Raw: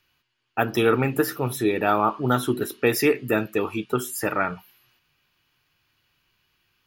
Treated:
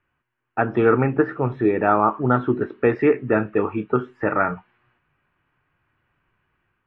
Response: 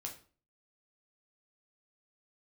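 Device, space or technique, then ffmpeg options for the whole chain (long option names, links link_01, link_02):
action camera in a waterproof case: -filter_complex "[0:a]asettb=1/sr,asplit=3[link_01][link_02][link_03];[link_01]atrim=end=3.294[link_04];[link_02]atrim=start=3.29:end=4.54,asetpts=PTS-STARTPTS,afade=type=in:duration=0.004:curve=qsin,afade=type=out:start_time=1.246:duration=0.004:curve=qsin,asplit=2[link_05][link_06];[link_06]adelay=29,volume=-12.5dB[link_07];[link_05][link_07]amix=inputs=2:normalize=0,atrim=end_sample=55125[link_08];[link_03]atrim=start=4.536[link_09];[link_04][link_08]acrossfade=duration=0.004:curve1=hsin:curve2=qsin[link_10];[link_10][link_09]acrossfade=duration=0.004:curve1=qsin:curve2=hsin,lowpass=frequency=1900:width=0.5412,lowpass=frequency=1900:width=1.3066,dynaudnorm=framelen=370:gausssize=3:maxgain=4dB" -ar 32000 -c:a aac -b:a 48k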